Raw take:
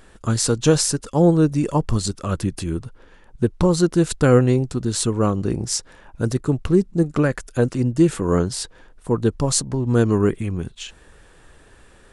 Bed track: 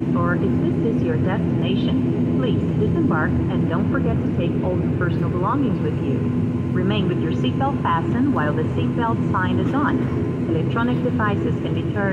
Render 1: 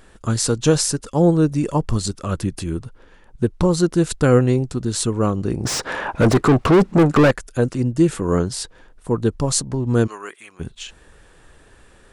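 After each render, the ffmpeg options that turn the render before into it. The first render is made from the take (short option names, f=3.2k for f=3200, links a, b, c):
-filter_complex "[0:a]asettb=1/sr,asplit=3[a][b][c];[a]atrim=end=5.654[d];[b]atrim=start=5.65:end=7.31,asetpts=PTS-STARTPTS,afade=t=in:d=0.004:c=qsin,afade=t=out:st=1.656:d=0.004:c=qsin,asplit=2[e][f];[f]highpass=f=720:p=1,volume=34dB,asoftclip=type=tanh:threshold=-5dB[g];[e][g]amix=inputs=2:normalize=0,lowpass=f=1.4k:p=1,volume=-6dB[h];[c]atrim=start=7.306[i];[d][h]acrossfade=d=0.004:c1=hsin:c2=qsin[j];[j][i]acrossfade=d=0.004:c1=qsin:c2=hsin,asplit=3[k][l][m];[k]afade=t=out:st=10.06:d=0.02[n];[l]highpass=1.1k,afade=t=in:st=10.06:d=0.02,afade=t=out:st=10.59:d=0.02[o];[m]afade=t=in:st=10.59:d=0.02[p];[n][o][p]amix=inputs=3:normalize=0"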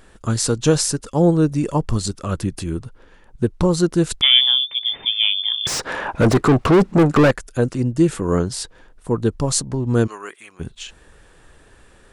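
-filter_complex "[0:a]asettb=1/sr,asplit=3[a][b][c];[a]atrim=end=4.214[d];[b]atrim=start=4.21:end=5.67,asetpts=PTS-STARTPTS,afade=t=in:d=0.004:c=qsin,afade=t=out:st=1.456:d=0.004:c=qsin,lowpass=f=3.1k:t=q:w=0.5098,lowpass=f=3.1k:t=q:w=0.6013,lowpass=f=3.1k:t=q:w=0.9,lowpass=f=3.1k:t=q:w=2.563,afreqshift=-3600[e];[c]atrim=start=5.666[f];[d][e]acrossfade=d=0.004:c1=hsin:c2=qsin[g];[g][f]acrossfade=d=0.004:c1=qsin:c2=hsin"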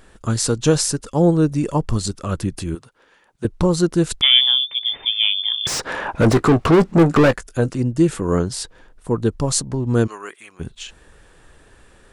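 -filter_complex "[0:a]asettb=1/sr,asplit=3[a][b][c];[a]atrim=end=2.754[d];[b]atrim=start=2.75:end=3.45,asetpts=PTS-STARTPTS,afade=t=in:d=0.004:c=qsin,afade=t=out:st=0.696:d=0.004:c=qsin,highpass=f=760:p=1[e];[c]atrim=start=3.446[f];[d][e]acrossfade=d=0.004:c1=hsin:c2=qsin[g];[g][f]acrossfade=d=0.004:c1=qsin:c2=hsin,asettb=1/sr,asplit=3[h][i][j];[h]atrim=end=4.974[k];[i]atrim=start=4.97:end=5.44,asetpts=PTS-STARTPTS,afade=t=in:d=0.004:c=qsin,afade=t=out:st=0.466:d=0.004:c=qsin,equalizer=f=180:w=1.3:g=-12.5[l];[j]atrim=start=5.436[m];[k][l]acrossfade=d=0.004:c1=hsin:c2=qsin[n];[n][m]acrossfade=d=0.004:c1=qsin:c2=hsin,asettb=1/sr,asplit=3[o][p][q];[o]atrim=end=6.254[r];[p]atrim=start=6.25:end=7.71,asetpts=PTS-STARTPTS,afade=t=in:d=0.004:c=qsin,afade=t=out:st=1.456:d=0.004:c=qsin,asplit=2[s][t];[t]adelay=18,volume=-13dB[u];[s][u]amix=inputs=2:normalize=0,atrim=end_sample=64386[v];[q]atrim=start=7.706[w];[r][v]acrossfade=d=0.004:c1=hsin:c2=qsin[x];[x][w]acrossfade=d=0.004:c1=qsin:c2=hsin"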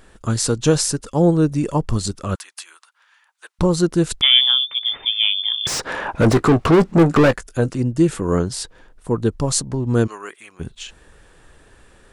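-filter_complex "[0:a]asettb=1/sr,asplit=3[a][b][c];[a]atrim=end=2.354[d];[b]atrim=start=2.35:end=3.59,asetpts=PTS-STARTPTS,afade=t=in:d=0.004:c=qsin,afade=t=out:st=1.236:d=0.004:c=qsin,highpass=f=980:w=0.5412,highpass=f=980:w=1.3066[e];[c]atrim=start=3.586[f];[d][e]acrossfade=d=0.004:c1=hsin:c2=qsin[g];[g][f]acrossfade=d=0.004:c1=qsin:c2=hsin,asettb=1/sr,asplit=3[h][i][j];[h]atrim=end=4.494[k];[i]atrim=start=4.49:end=4.99,asetpts=PTS-STARTPTS,afade=t=in:d=0.004:c=qsin,afade=t=out:st=0.496:d=0.004:c=qsin,equalizer=f=1.3k:w=2.9:g=10[l];[j]atrim=start=4.986[m];[k][l]acrossfade=d=0.004:c1=hsin:c2=qsin[n];[n][m]acrossfade=d=0.004:c1=qsin:c2=hsin"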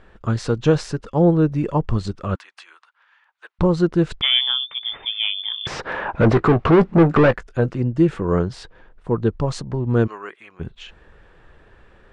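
-af "lowpass=2.7k,equalizer=f=270:w=7.3:g=-6"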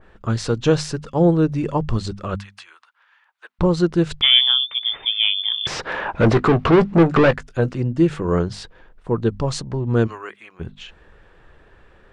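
-af "bandreject=f=50:t=h:w=6,bandreject=f=100:t=h:w=6,bandreject=f=150:t=h:w=6,bandreject=f=200:t=h:w=6,bandreject=f=250:t=h:w=6,adynamicequalizer=threshold=0.0158:dfrequency=2500:dqfactor=0.7:tfrequency=2500:tqfactor=0.7:attack=5:release=100:ratio=0.375:range=3:mode=boostabove:tftype=highshelf"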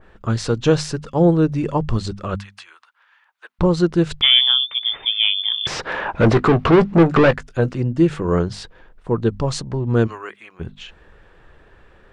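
-af "volume=1dB,alimiter=limit=-2dB:level=0:latency=1"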